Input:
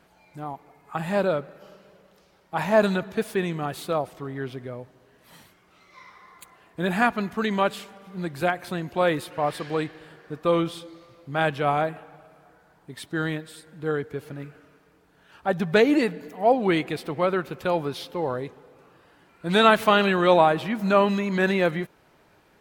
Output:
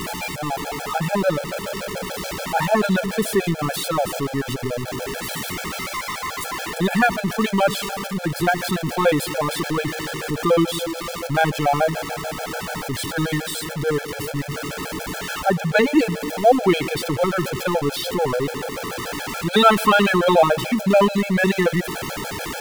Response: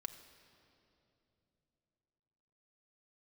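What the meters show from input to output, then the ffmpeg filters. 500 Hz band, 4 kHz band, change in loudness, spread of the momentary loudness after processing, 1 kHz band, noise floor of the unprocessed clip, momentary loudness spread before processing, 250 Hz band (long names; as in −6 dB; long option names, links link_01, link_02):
+3.5 dB, +7.0 dB, +3.0 dB, 11 LU, +4.0 dB, −60 dBFS, 18 LU, +5.0 dB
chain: -filter_complex "[0:a]aeval=exprs='val(0)+0.5*0.0596*sgn(val(0))':channel_layout=same,asplit=2[link_01][link_02];[1:a]atrim=start_sample=2205[link_03];[link_02][link_03]afir=irnorm=-1:irlink=0,volume=-8dB[link_04];[link_01][link_04]amix=inputs=2:normalize=0,afftfilt=real='re*gt(sin(2*PI*6.9*pts/sr)*(1-2*mod(floor(b*sr/1024/440),2)),0)':imag='im*gt(sin(2*PI*6.9*pts/sr)*(1-2*mod(floor(b*sr/1024/440),2)),0)':win_size=1024:overlap=0.75,volume=3dB"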